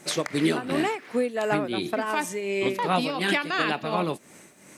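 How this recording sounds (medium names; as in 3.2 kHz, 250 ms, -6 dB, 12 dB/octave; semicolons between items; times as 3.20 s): tremolo triangle 2.8 Hz, depth 70%; a quantiser's noise floor 12-bit, dither none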